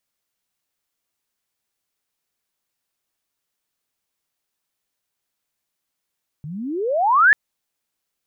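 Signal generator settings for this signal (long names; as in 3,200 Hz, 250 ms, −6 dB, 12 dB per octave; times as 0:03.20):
glide logarithmic 140 Hz → 1,800 Hz −29.5 dBFS → −8 dBFS 0.89 s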